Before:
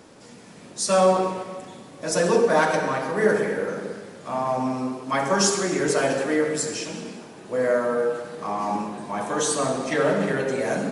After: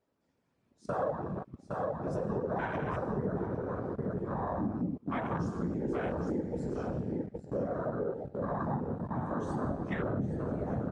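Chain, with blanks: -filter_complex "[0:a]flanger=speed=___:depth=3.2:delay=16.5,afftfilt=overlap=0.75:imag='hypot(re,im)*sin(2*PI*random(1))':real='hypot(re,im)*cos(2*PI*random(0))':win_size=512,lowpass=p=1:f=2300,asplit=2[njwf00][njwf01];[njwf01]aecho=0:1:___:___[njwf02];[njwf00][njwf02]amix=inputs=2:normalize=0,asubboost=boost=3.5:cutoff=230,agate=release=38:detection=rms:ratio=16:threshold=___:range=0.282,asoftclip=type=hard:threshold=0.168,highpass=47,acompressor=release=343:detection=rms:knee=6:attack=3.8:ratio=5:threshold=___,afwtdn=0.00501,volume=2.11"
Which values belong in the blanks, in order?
0.73, 809, 0.422, 0.00891, 0.0178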